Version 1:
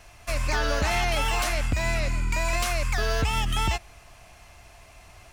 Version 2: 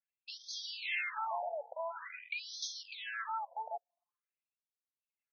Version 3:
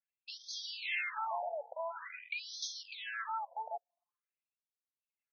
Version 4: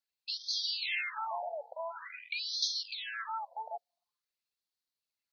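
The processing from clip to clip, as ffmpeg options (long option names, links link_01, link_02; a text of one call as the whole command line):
ffmpeg -i in.wav -af "anlmdn=6.31,afftfilt=real='re*between(b*sr/1024,620*pow(4600/620,0.5+0.5*sin(2*PI*0.47*pts/sr))/1.41,620*pow(4600/620,0.5+0.5*sin(2*PI*0.47*pts/sr))*1.41)':imag='im*between(b*sr/1024,620*pow(4600/620,0.5+0.5*sin(2*PI*0.47*pts/sr))/1.41,620*pow(4600/620,0.5+0.5*sin(2*PI*0.47*pts/sr))*1.41)':win_size=1024:overlap=0.75,volume=-5dB" out.wav
ffmpeg -i in.wav -af anull out.wav
ffmpeg -i in.wav -af "equalizer=frequency=4300:width_type=o:width=0.57:gain=12.5" out.wav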